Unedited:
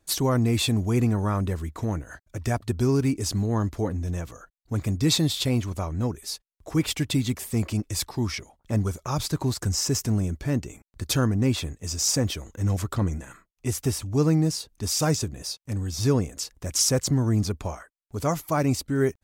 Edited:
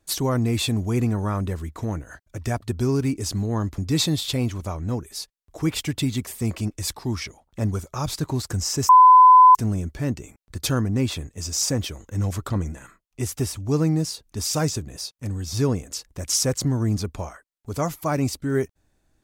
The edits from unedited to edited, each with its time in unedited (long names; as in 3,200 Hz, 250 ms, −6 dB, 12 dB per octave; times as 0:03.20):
0:03.78–0:04.90: remove
0:10.01: insert tone 1,010 Hz −7 dBFS 0.66 s